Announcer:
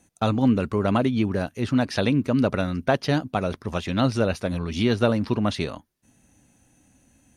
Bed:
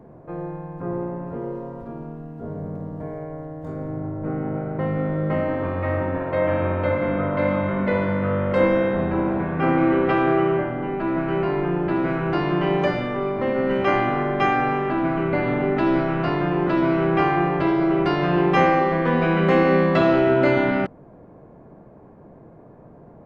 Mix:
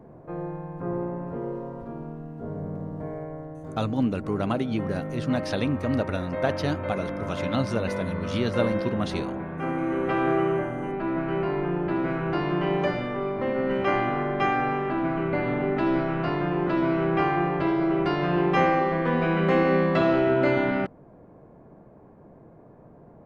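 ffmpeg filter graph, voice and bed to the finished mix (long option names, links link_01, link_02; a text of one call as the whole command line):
ffmpeg -i stem1.wav -i stem2.wav -filter_complex "[0:a]adelay=3550,volume=-5dB[link_01];[1:a]volume=3dB,afade=type=out:start_time=3.16:duration=0.82:silence=0.446684,afade=type=in:start_time=9.86:duration=0.41:silence=0.562341[link_02];[link_01][link_02]amix=inputs=2:normalize=0" out.wav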